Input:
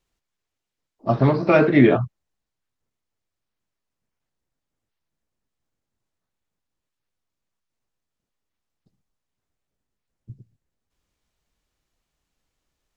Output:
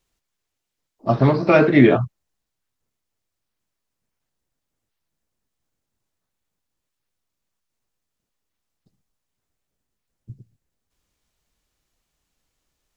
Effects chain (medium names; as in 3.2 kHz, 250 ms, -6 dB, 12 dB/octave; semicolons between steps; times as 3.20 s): treble shelf 4.9 kHz +5 dB; trim +1.5 dB